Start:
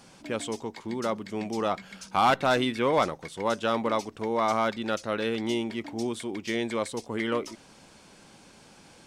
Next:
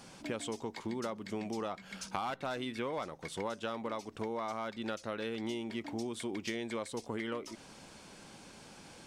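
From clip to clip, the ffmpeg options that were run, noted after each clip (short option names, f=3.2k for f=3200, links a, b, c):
-af "acompressor=threshold=-34dB:ratio=10"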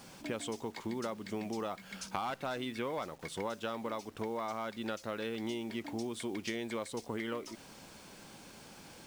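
-af "acrusher=bits=9:mix=0:aa=0.000001"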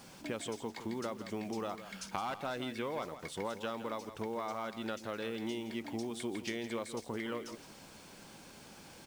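-af "aecho=1:1:165:0.251,volume=-1dB"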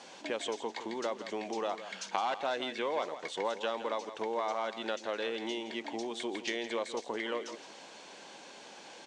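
-af "highpass=450,equalizer=f=1.3k:t=q:w=4:g=-7,equalizer=f=2.3k:t=q:w=4:g=-3,equalizer=f=5.1k:t=q:w=4:g=-6,lowpass=f=6.6k:w=0.5412,lowpass=f=6.6k:w=1.3066,volume=7.5dB"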